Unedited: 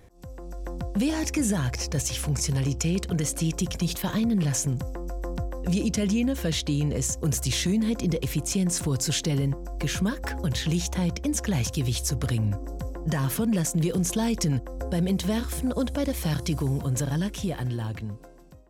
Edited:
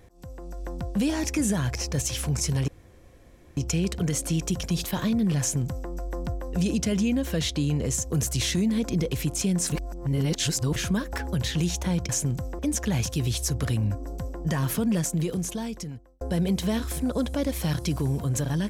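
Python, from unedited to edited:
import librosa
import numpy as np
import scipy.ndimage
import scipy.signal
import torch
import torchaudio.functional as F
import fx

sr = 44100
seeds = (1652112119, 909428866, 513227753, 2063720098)

y = fx.edit(x, sr, fx.insert_room_tone(at_s=2.68, length_s=0.89),
    fx.duplicate(start_s=4.51, length_s=0.5, to_s=11.2),
    fx.reverse_span(start_s=8.83, length_s=1.04),
    fx.fade_out_span(start_s=13.55, length_s=1.27), tone=tone)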